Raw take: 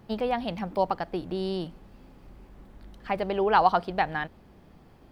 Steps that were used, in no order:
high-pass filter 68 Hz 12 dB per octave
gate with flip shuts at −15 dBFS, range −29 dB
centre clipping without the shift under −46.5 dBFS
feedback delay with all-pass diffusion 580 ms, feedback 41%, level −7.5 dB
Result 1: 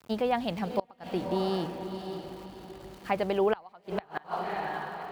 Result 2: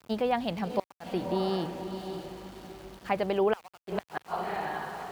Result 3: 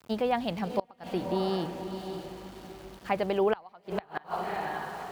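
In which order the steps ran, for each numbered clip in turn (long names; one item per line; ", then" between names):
centre clipping without the shift, then feedback delay with all-pass diffusion, then gate with flip, then high-pass filter
feedback delay with all-pass diffusion, then gate with flip, then centre clipping without the shift, then high-pass filter
feedback delay with all-pass diffusion, then centre clipping without the shift, then gate with flip, then high-pass filter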